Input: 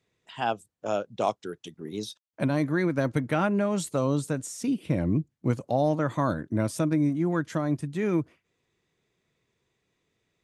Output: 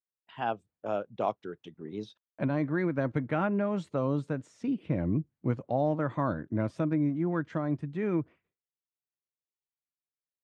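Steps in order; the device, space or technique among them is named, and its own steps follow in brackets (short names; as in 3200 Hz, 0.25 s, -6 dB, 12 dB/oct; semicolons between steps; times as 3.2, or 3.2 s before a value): hearing-loss simulation (LPF 2400 Hz 12 dB/oct; expander -55 dBFS); gain -3.5 dB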